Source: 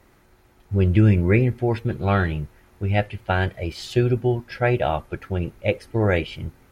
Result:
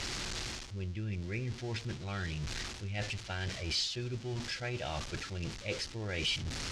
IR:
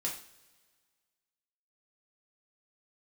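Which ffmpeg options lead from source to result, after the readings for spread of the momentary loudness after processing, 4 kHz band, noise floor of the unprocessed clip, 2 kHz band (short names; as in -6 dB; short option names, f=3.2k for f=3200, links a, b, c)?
7 LU, +2.0 dB, -57 dBFS, -11.0 dB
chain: -af "aeval=exprs='val(0)+0.5*0.0398*sgn(val(0))':c=same,equalizer=f=760:t=o:w=2.8:g=-5.5,areverse,acompressor=threshold=-30dB:ratio=6,areverse,lowpass=f=5.8k:w=0.5412,lowpass=f=5.8k:w=1.3066,crystalizer=i=5:c=0,volume=-6dB"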